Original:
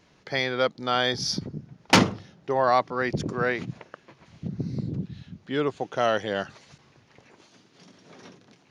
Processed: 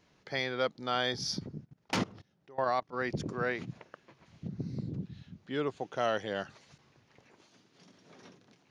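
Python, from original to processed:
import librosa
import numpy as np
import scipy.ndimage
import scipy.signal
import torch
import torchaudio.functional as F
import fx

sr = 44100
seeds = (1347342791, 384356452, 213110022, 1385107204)

y = fx.level_steps(x, sr, step_db=22, at=(1.64, 2.92), fade=0.02)
y = F.gain(torch.from_numpy(y), -7.0).numpy()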